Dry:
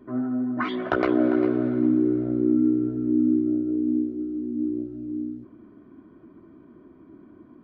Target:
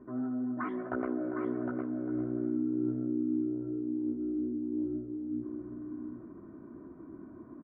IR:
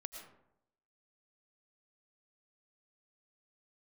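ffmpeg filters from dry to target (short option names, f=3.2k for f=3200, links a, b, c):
-af "lowpass=f=1.7k:w=0.5412,lowpass=f=1.7k:w=1.3066,areverse,acompressor=threshold=-32dB:ratio=6,areverse,aecho=1:1:759:0.501"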